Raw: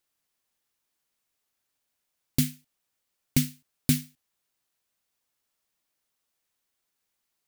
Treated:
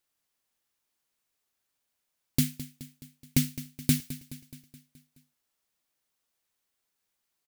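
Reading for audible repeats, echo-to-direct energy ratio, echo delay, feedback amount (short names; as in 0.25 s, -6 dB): 5, -13.0 dB, 0.212 s, 58%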